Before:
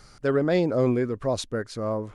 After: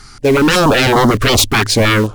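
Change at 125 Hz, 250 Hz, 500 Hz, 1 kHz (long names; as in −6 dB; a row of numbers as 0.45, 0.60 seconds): +14.0, +12.0, +10.0, +20.0 decibels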